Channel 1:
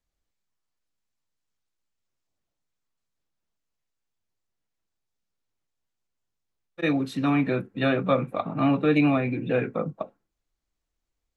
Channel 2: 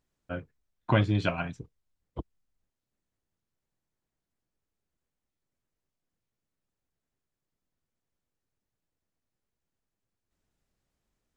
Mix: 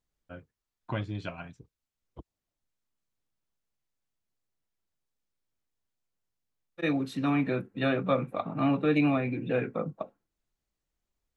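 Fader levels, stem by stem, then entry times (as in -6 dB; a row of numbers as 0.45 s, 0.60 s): -4.0 dB, -9.5 dB; 0.00 s, 0.00 s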